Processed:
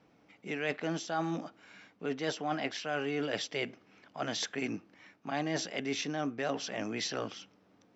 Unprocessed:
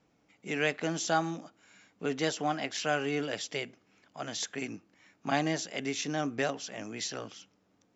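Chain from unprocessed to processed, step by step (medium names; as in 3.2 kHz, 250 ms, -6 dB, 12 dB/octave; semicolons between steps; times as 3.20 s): treble shelf 6.5 kHz -11.5 dB; band-stop 6.9 kHz, Q 6.7; reverse; compression 6:1, threshold -36 dBFS, peak gain reduction 13 dB; reverse; bass shelf 77 Hz -9 dB; trim +6 dB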